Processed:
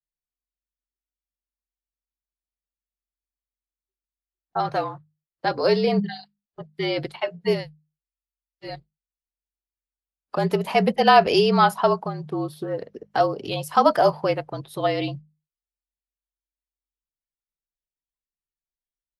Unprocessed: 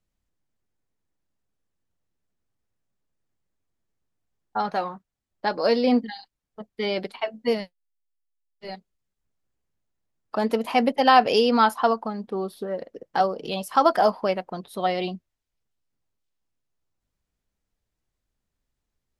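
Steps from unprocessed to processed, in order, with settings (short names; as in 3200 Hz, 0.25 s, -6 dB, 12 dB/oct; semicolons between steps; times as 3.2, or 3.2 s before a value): notches 50/100/150/200/250 Hz; spectral noise reduction 23 dB; frequency shift -47 Hz; gain +1.5 dB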